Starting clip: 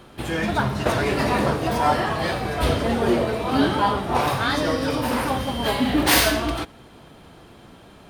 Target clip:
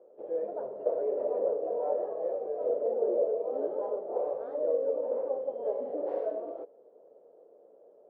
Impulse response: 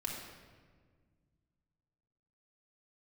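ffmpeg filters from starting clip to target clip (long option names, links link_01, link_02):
-af "aeval=exprs='clip(val(0),-1,0.141)':channel_layout=same,asuperpass=centerf=510:order=4:qfactor=3.1"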